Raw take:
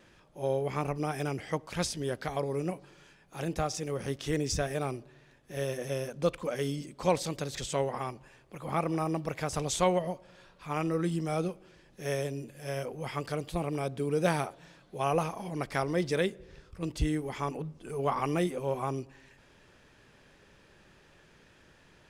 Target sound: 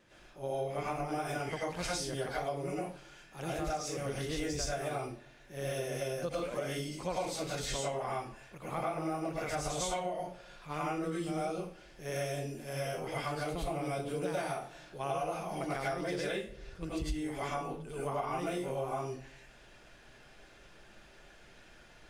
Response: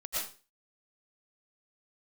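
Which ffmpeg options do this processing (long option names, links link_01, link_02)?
-filter_complex "[1:a]atrim=start_sample=2205,asetrate=48510,aresample=44100[link_01];[0:a][link_01]afir=irnorm=-1:irlink=0,acompressor=threshold=-32dB:ratio=6"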